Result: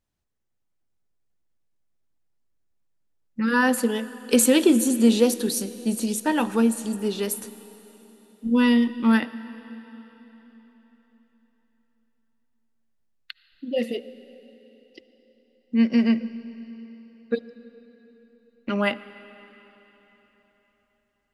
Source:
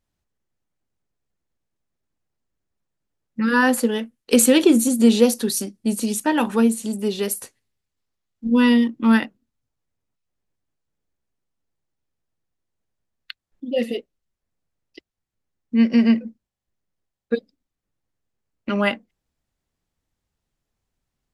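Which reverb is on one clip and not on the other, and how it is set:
comb and all-pass reverb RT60 4.1 s, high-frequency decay 0.95×, pre-delay 35 ms, DRR 15 dB
level −3 dB

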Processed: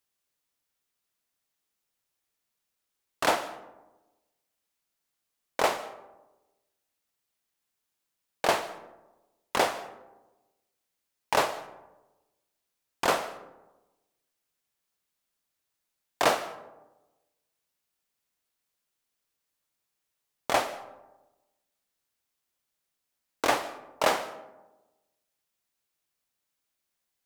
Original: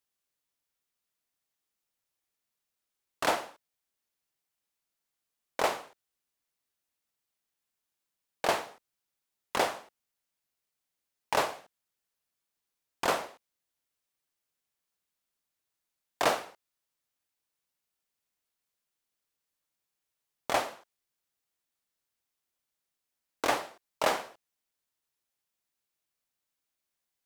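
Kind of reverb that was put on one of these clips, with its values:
comb and all-pass reverb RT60 1.1 s, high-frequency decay 0.35×, pre-delay 105 ms, DRR 16.5 dB
level +3 dB

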